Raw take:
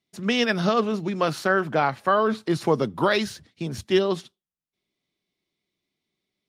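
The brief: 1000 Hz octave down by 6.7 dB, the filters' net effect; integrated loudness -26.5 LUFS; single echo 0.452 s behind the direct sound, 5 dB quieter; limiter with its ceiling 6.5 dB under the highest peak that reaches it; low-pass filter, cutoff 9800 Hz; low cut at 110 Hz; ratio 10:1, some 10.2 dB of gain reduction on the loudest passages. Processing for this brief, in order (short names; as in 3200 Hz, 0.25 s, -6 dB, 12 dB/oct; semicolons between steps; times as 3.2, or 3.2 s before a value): HPF 110 Hz; LPF 9800 Hz; bell 1000 Hz -9 dB; compressor 10:1, threshold -27 dBFS; limiter -23.5 dBFS; echo 0.452 s -5 dB; gain +7 dB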